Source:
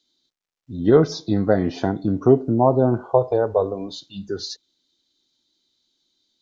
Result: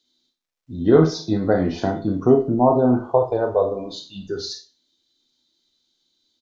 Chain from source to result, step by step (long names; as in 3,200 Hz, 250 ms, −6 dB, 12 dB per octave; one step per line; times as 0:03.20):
double-tracking delay 12 ms −11 dB
four-comb reverb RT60 0.31 s, combs from 25 ms, DRR 4 dB
level −1 dB